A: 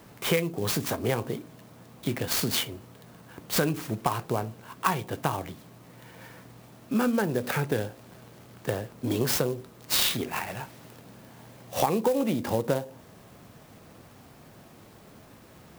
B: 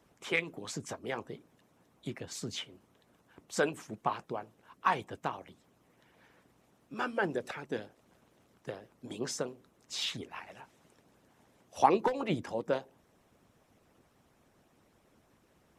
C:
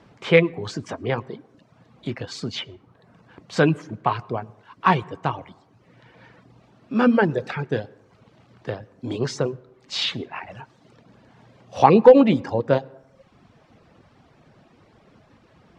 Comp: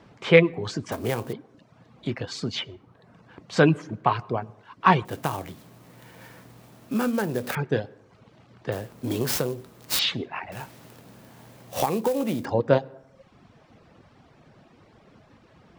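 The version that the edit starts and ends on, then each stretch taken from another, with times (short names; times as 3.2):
C
0.92–1.33 from A
5.05–7.55 from A
8.72–9.99 from A
10.52–12.45 from A
not used: B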